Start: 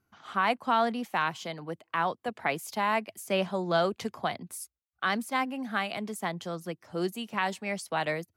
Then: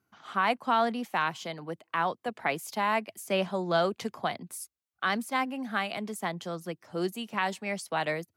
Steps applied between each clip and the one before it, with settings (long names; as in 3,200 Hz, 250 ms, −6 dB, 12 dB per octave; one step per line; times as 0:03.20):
high-pass filter 110 Hz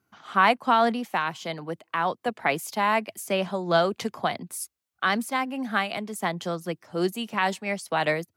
amplitude modulation by smooth noise, depth 60%
level +8 dB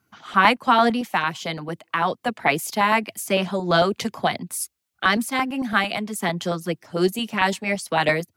auto-filter notch saw up 8.9 Hz 290–1,700 Hz
level +6 dB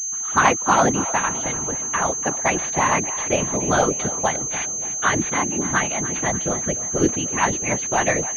random phases in short frames
echo with a time of its own for lows and highs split 420 Hz, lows 491 ms, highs 291 ms, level −14.5 dB
switching amplifier with a slow clock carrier 6,300 Hz